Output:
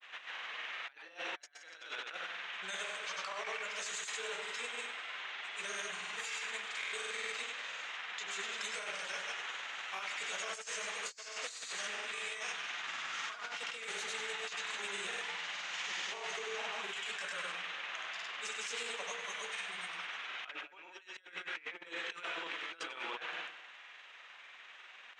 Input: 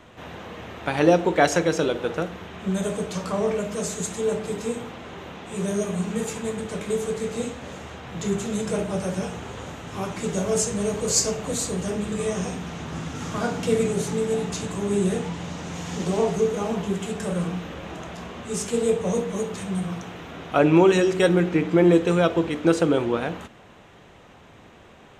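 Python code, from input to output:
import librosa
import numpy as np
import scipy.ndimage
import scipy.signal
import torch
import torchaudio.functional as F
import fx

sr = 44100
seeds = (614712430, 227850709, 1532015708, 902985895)

y = fx.granulator(x, sr, seeds[0], grain_ms=100.0, per_s=20.0, spray_ms=100.0, spread_st=0)
y = fx.ladder_bandpass(y, sr, hz=2600.0, resonance_pct=20)
y = fx.echo_feedback(y, sr, ms=97, feedback_pct=49, wet_db=-12.0)
y = fx.over_compress(y, sr, threshold_db=-53.0, ratio=-0.5)
y = y * 10.0 ** (11.5 / 20.0)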